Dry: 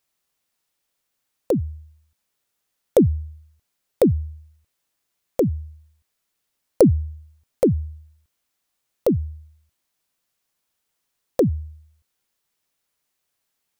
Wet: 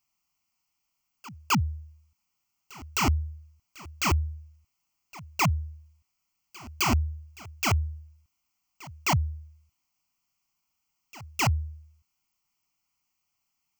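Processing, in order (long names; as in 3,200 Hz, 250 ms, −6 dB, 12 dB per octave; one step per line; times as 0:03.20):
wrap-around overflow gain 16 dB
phaser with its sweep stopped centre 2,500 Hz, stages 8
backwards echo 261 ms −20.5 dB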